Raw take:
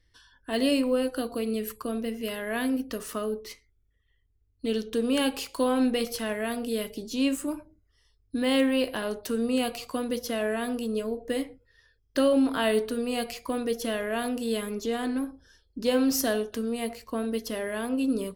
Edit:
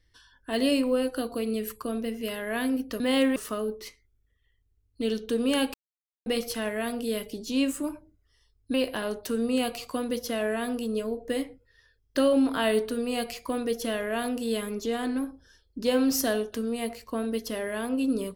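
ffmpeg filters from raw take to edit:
ffmpeg -i in.wav -filter_complex "[0:a]asplit=6[link_01][link_02][link_03][link_04][link_05][link_06];[link_01]atrim=end=3.002[link_07];[link_02]atrim=start=8.378:end=8.742[link_08];[link_03]atrim=start=2.998:end=5.38,asetpts=PTS-STARTPTS,afade=type=out:start_time=2.378:duration=0.004:curve=hsin[link_09];[link_04]atrim=start=5.38:end=5.9,asetpts=PTS-STARTPTS,volume=0[link_10];[link_05]atrim=start=5.9:end=8.382,asetpts=PTS-STARTPTS,afade=type=in:duration=0.004:curve=hsin[link_11];[link_06]atrim=start=8.738[link_12];[link_07][link_08]acrossfade=duration=0.004:curve1=hsin:curve2=hsin[link_13];[link_09][link_10][link_11]concat=n=3:v=0:a=1[link_14];[link_13][link_14]acrossfade=duration=0.004:curve1=hsin:curve2=hsin[link_15];[link_15][link_12]acrossfade=duration=0.004:curve1=hsin:curve2=hsin" out.wav

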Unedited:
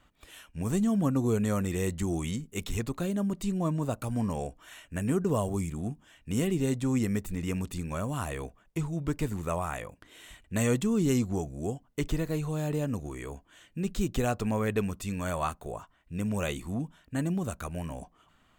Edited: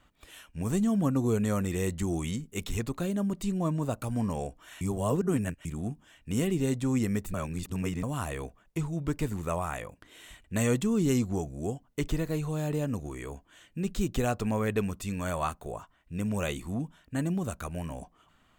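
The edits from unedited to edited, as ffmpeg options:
ffmpeg -i in.wav -filter_complex "[0:a]asplit=5[link_01][link_02][link_03][link_04][link_05];[link_01]atrim=end=4.812[link_06];[link_02]atrim=start=4.808:end=5.652,asetpts=PTS-STARTPTS,areverse[link_07];[link_03]atrim=start=5.648:end=7.342[link_08];[link_04]atrim=start=7.338:end=8.032,asetpts=PTS-STARTPTS,areverse[link_09];[link_05]atrim=start=8.028[link_10];[link_06][link_07]acrossfade=duration=0.004:curve1=hsin:curve2=hsin[link_11];[link_11][link_08]acrossfade=duration=0.004:curve1=hsin:curve2=hsin[link_12];[link_12][link_09]acrossfade=duration=0.004:curve1=hsin:curve2=hsin[link_13];[link_13][link_10]acrossfade=duration=0.004:curve1=hsin:curve2=hsin" out.wav

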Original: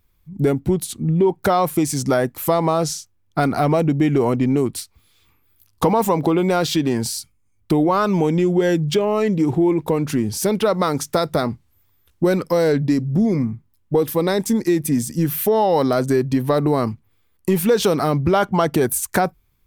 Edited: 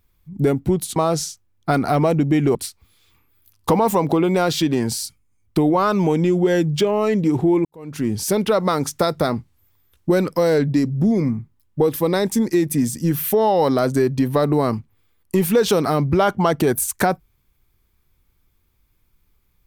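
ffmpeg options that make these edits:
ffmpeg -i in.wav -filter_complex "[0:a]asplit=4[link_01][link_02][link_03][link_04];[link_01]atrim=end=0.962[link_05];[link_02]atrim=start=2.648:end=4.242[link_06];[link_03]atrim=start=4.688:end=9.79,asetpts=PTS-STARTPTS,afade=type=out:start_time=5.098:duration=0.004:curve=hsin[link_07];[link_04]atrim=start=9.79,asetpts=PTS-STARTPTS,afade=type=in:duration=0.44:curve=qua[link_08];[link_05][link_06]acrossfade=duration=0.004:curve1=hsin:curve2=hsin[link_09];[link_07][link_08]concat=n=2:v=0:a=1[link_10];[link_09][link_10]acrossfade=duration=0.004:curve1=hsin:curve2=hsin" out.wav

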